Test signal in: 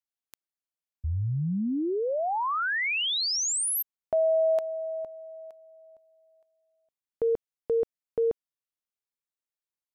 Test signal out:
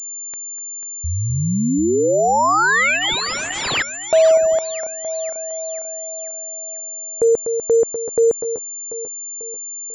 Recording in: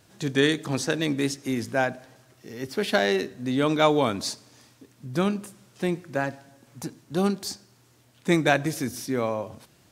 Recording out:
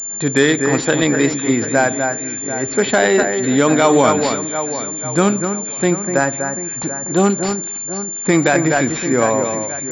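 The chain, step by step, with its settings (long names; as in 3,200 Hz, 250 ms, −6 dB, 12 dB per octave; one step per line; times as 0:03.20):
low-shelf EQ 190 Hz −7 dB
notch filter 2,800 Hz, Q 7.3
on a send: delay that swaps between a low-pass and a high-pass 246 ms, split 2,200 Hz, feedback 69%, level −7.5 dB
on the sum: boost into a limiter +13 dB
switching amplifier with a slow clock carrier 7,200 Hz
level −1 dB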